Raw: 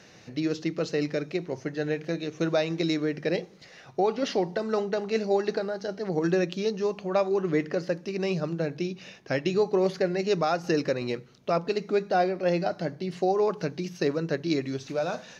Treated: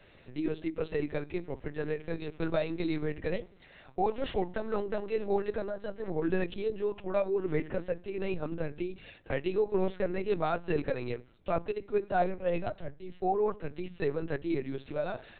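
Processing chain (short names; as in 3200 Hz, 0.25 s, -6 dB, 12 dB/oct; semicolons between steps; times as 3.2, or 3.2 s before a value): LPC vocoder at 8 kHz pitch kept; 11.71–13.71 three-band expander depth 70%; gain -4.5 dB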